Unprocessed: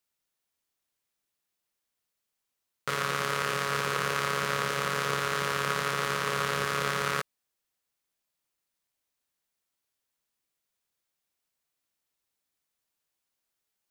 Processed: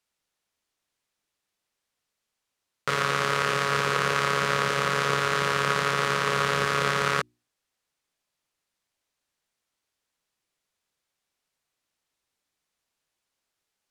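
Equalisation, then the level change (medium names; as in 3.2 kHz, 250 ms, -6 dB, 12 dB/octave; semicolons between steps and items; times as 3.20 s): distance through air 51 m; treble shelf 11 kHz +6 dB; hum notches 60/120/180/240/300/360 Hz; +5.0 dB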